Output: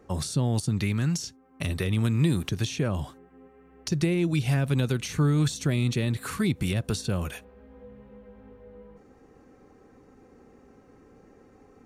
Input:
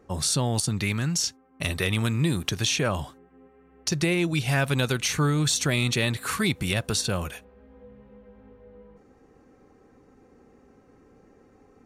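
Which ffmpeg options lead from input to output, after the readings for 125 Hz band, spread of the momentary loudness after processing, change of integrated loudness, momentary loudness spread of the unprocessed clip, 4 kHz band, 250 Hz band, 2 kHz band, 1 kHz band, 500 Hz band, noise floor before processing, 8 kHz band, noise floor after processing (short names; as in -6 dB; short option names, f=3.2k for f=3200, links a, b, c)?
+1.5 dB, 9 LU, -1.5 dB, 8 LU, -8.5 dB, +1.0 dB, -7.5 dB, -6.0 dB, -2.5 dB, -58 dBFS, -9.0 dB, -56 dBFS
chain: -filter_complex "[0:a]acrossover=split=420[a][b];[b]acompressor=threshold=-35dB:ratio=6[c];[a][c]amix=inputs=2:normalize=0,volume=1.5dB"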